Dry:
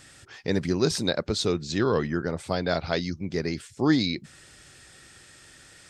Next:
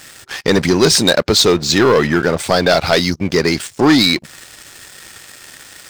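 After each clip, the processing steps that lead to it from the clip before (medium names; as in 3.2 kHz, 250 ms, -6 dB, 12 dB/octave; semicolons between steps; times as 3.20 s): bass shelf 360 Hz -9 dB; waveshaping leveller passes 3; in parallel at -2 dB: compression, threshold -27 dBFS, peak gain reduction 11.5 dB; on the sum: trim +5.5 dB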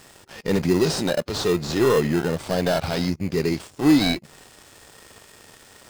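harmonic-percussive split percussive -12 dB; in parallel at -3 dB: sample-rate reducer 2.3 kHz, jitter 0%; on the sum: trim -8 dB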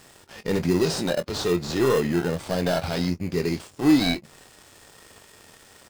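doubling 23 ms -11.5 dB; trim -2.5 dB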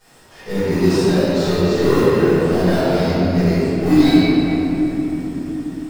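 reverberation RT60 4.3 s, pre-delay 5 ms, DRR -18 dB; trim -14 dB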